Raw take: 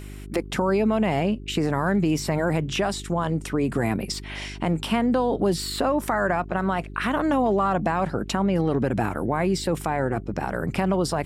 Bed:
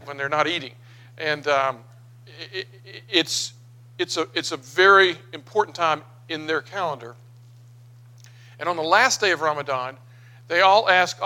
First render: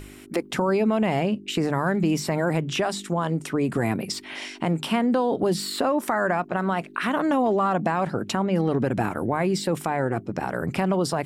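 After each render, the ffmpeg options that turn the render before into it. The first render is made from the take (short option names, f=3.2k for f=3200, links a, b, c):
-af "bandreject=f=50:t=h:w=4,bandreject=f=100:t=h:w=4,bandreject=f=150:t=h:w=4,bandreject=f=200:t=h:w=4"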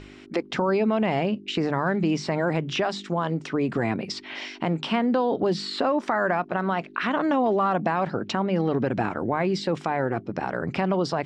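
-af "lowpass=f=5.5k:w=0.5412,lowpass=f=5.5k:w=1.3066,lowshelf=f=130:g=-5.5"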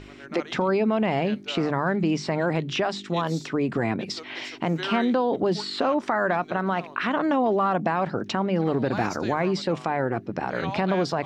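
-filter_complex "[1:a]volume=-18.5dB[a];[0:a][a]amix=inputs=2:normalize=0"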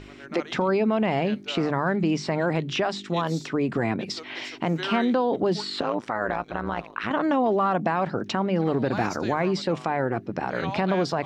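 -filter_complex "[0:a]asettb=1/sr,asplit=3[a][b][c];[a]atrim=end=5.814[d];[b]atrim=start=5.81:end=7.11,asetpts=PTS-STARTPTS,afade=t=in:d=0.004:c=qsin,afade=t=out:st=1.296:d=0.004:c=qsin,tremolo=f=110:d=0.889[e];[c]atrim=start=7.106[f];[d][e]acrossfade=d=0.004:c1=hsin:c2=qsin[g];[g][f]acrossfade=d=0.004:c1=qsin:c2=hsin"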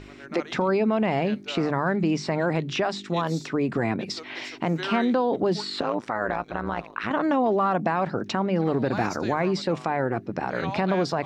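-af "equalizer=f=3.1k:t=o:w=0.22:g=-3.5"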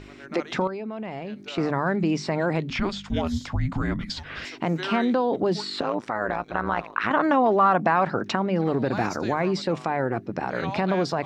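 -filter_complex "[0:a]asettb=1/sr,asplit=3[a][b][c];[a]atrim=end=0.674[d];[b]atrim=start=0.67:end=1.58,asetpts=PTS-STARTPTS,afade=t=in:d=0.004:c=qsin,afade=t=out:st=0.906:d=0.004:c=qsin,acompressor=threshold=-31dB:ratio=5:attack=3.2:release=140:knee=1:detection=peak[e];[c]atrim=start=1.576[f];[d][e]acrossfade=d=0.004:c1=hsin:c2=qsin[g];[g][f]acrossfade=d=0.004:c1=qsin:c2=hsin,asettb=1/sr,asplit=3[h][i][j];[h]atrim=end=2.704[k];[i]atrim=start=2.7:end=4.45,asetpts=PTS-STARTPTS,afade=t=in:d=0.004:c=qsin,afade=t=out:st=1.746:d=0.004:c=qsin,afreqshift=-400[l];[j]atrim=start=4.446[m];[k][l]acrossfade=d=0.004:c1=hsin:c2=qsin[n];[n][m]acrossfade=d=0.004:c1=qsin:c2=hsin,asettb=1/sr,asplit=3[o][p][q];[o]atrim=end=6.544[r];[p]atrim=start=6.54:end=8.36,asetpts=PTS-STARTPTS,afade=t=in:d=0.004:c=qsin,afade=t=out:st=1.816:d=0.004:c=qsin,equalizer=f=1.3k:w=0.68:g=6[s];[q]atrim=start=8.356[t];[r][s]acrossfade=d=0.004:c1=hsin:c2=qsin[u];[u][t]acrossfade=d=0.004:c1=qsin:c2=hsin"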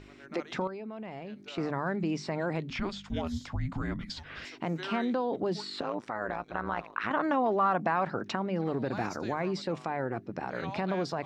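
-af "volume=-7.5dB"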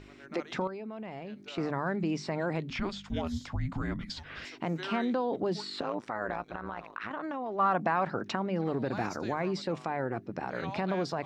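-filter_complex "[0:a]asplit=3[a][b][c];[a]afade=t=out:st=6.42:d=0.02[d];[b]acompressor=threshold=-33dB:ratio=6:attack=3.2:release=140:knee=1:detection=peak,afade=t=in:st=6.42:d=0.02,afade=t=out:st=7.58:d=0.02[e];[c]afade=t=in:st=7.58:d=0.02[f];[d][e][f]amix=inputs=3:normalize=0"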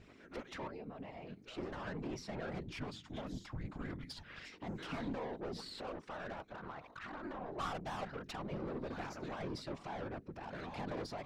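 -af "aeval=exprs='(tanh(39.8*val(0)+0.5)-tanh(0.5))/39.8':c=same,afftfilt=real='hypot(re,im)*cos(2*PI*random(0))':imag='hypot(re,im)*sin(2*PI*random(1))':win_size=512:overlap=0.75"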